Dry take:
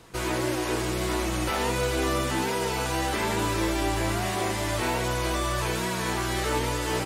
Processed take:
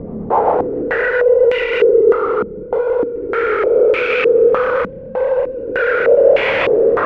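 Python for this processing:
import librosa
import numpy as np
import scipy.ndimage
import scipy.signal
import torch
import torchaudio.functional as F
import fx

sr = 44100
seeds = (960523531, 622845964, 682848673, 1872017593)

y = fx.sine_speech(x, sr)
y = fx.over_compress(y, sr, threshold_db=-31.0, ratio=-1.0)
y = fx.paulstretch(y, sr, seeds[0], factor=35.0, window_s=0.05, from_s=0.43)
y = fx.rotary_switch(y, sr, hz=7.5, then_hz=0.65, switch_at_s=1.36)
y = fx.fuzz(y, sr, gain_db=43.0, gate_db=-52.0)
y = fx.doubler(y, sr, ms=28.0, db=-7.0)
y = fx.filter_held_lowpass(y, sr, hz=3.3, low_hz=210.0, high_hz=2400.0)
y = y * 10.0 ** (-4.0 / 20.0)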